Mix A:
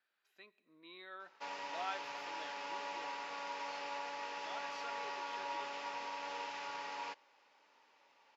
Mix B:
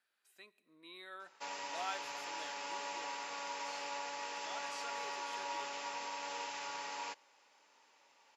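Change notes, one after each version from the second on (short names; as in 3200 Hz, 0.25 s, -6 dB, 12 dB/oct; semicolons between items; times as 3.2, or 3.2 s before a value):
master: remove running mean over 5 samples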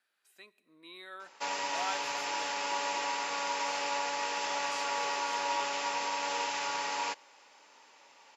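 speech +3.5 dB; background +9.0 dB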